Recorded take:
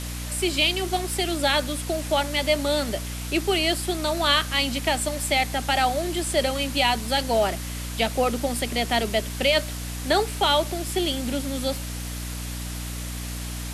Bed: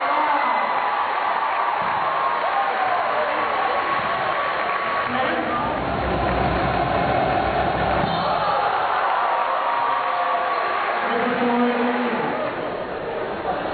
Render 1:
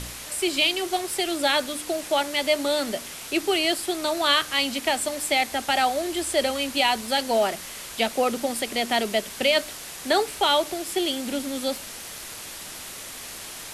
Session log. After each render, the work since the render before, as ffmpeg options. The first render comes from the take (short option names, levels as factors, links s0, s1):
-af "bandreject=f=60:t=h:w=4,bandreject=f=120:t=h:w=4,bandreject=f=180:t=h:w=4,bandreject=f=240:t=h:w=4,bandreject=f=300:t=h:w=4"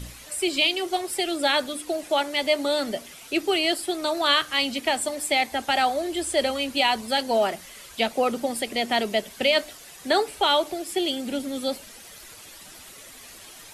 -af "afftdn=nr=10:nf=-38"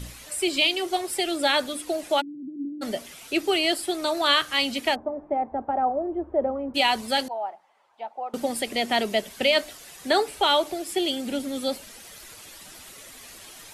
-filter_complex "[0:a]asplit=3[s0][s1][s2];[s0]afade=t=out:st=2.2:d=0.02[s3];[s1]asuperpass=centerf=220:order=12:qfactor=1.1,afade=t=in:st=2.2:d=0.02,afade=t=out:st=2.81:d=0.02[s4];[s2]afade=t=in:st=2.81:d=0.02[s5];[s3][s4][s5]amix=inputs=3:normalize=0,asplit=3[s6][s7][s8];[s6]afade=t=out:st=4.94:d=0.02[s9];[s7]lowpass=f=1000:w=0.5412,lowpass=f=1000:w=1.3066,afade=t=in:st=4.94:d=0.02,afade=t=out:st=6.74:d=0.02[s10];[s8]afade=t=in:st=6.74:d=0.02[s11];[s9][s10][s11]amix=inputs=3:normalize=0,asettb=1/sr,asplit=3[s12][s13][s14];[s12]atrim=end=7.284[s15];[s13]atrim=start=7.28:end=8.34,asetpts=PTS-STARTPTS,afade=t=in:d=0.004:c=qsin,afade=t=out:st=1.056:d=0.004:c=qsin,bandpass=f=840:t=q:w=6.5[s16];[s14]atrim=start=8.336[s17];[s15][s16]acrossfade=d=0.004:c1=hsin:c2=qsin[s18];[s18][s17]acrossfade=d=0.004:c1=qsin:c2=hsin"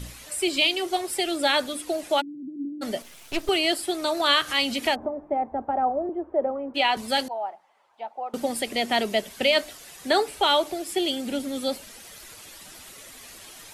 -filter_complex "[0:a]asettb=1/sr,asplit=3[s0][s1][s2];[s0]atrim=end=3.024[s3];[s1]atrim=start=3.02:end=3.49,asetpts=PTS-STARTPTS,afade=t=in:d=0.004:c=qsin,afade=t=out:st=0.466:d=0.004:c=qsin,aeval=exprs='max(val(0),0)':c=same[s4];[s2]atrim=start=3.486[s5];[s3][s4]acrossfade=d=0.004:c1=hsin:c2=qsin[s6];[s6][s5]acrossfade=d=0.004:c1=qsin:c2=hsin,asettb=1/sr,asplit=3[s7][s8][s9];[s7]atrim=end=4.204[s10];[s8]atrim=start=4.2:end=5.07,asetpts=PTS-STARTPTS,afade=t=in:d=0.004:c=qsin,afade=t=out:st=0.866:d=0.004:c=qsin,acompressor=mode=upward:threshold=0.0708:ratio=2.5:attack=3.2:release=140:knee=2.83:detection=peak[s11];[s9]atrim=start=5.066[s12];[s10][s11]acrossfade=d=0.004:c1=hsin:c2=qsin[s13];[s13][s12]acrossfade=d=0.004:c1=qsin:c2=hsin,asettb=1/sr,asplit=3[s14][s15][s16];[s14]atrim=end=6.094[s17];[s15]atrim=start=6.09:end=6.97,asetpts=PTS-STARTPTS,afade=t=in:d=0.004:c=qsin,afade=t=out:st=0.876:d=0.004:c=qsin,acrossover=split=240 4000:gain=0.251 1 0.224[s18][s19][s20];[s18][s19][s20]amix=inputs=3:normalize=0[s21];[s16]atrim=start=6.966[s22];[s17][s21]acrossfade=d=0.004:c1=hsin:c2=qsin[s23];[s23][s22]acrossfade=d=0.004:c1=qsin:c2=hsin"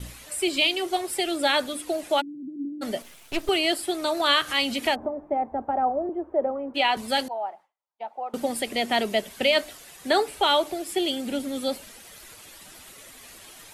-af "agate=range=0.0224:threshold=0.00708:ratio=3:detection=peak,equalizer=f=5500:w=1.5:g=-2.5"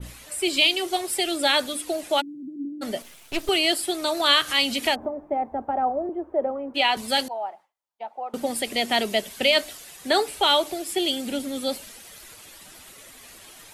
-af "adynamicequalizer=threshold=0.0178:dfrequency=2500:dqfactor=0.7:tfrequency=2500:tqfactor=0.7:attack=5:release=100:ratio=0.375:range=2.5:mode=boostabove:tftype=highshelf"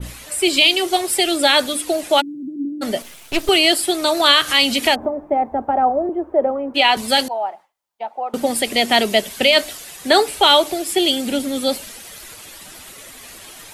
-af "volume=2.37,alimiter=limit=0.794:level=0:latency=1"